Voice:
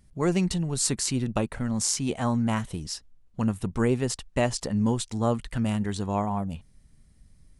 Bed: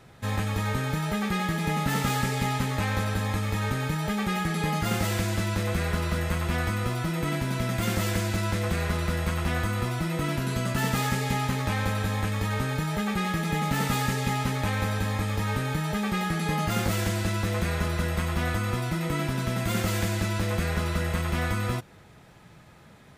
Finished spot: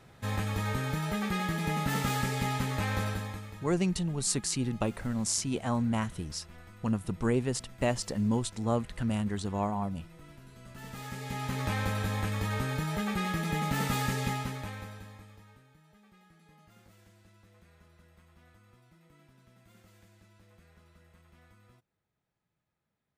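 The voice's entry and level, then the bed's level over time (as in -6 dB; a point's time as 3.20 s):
3.45 s, -4.0 dB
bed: 3.07 s -4 dB
3.77 s -24.5 dB
10.55 s -24.5 dB
11.64 s -4 dB
14.26 s -4 dB
15.70 s -33 dB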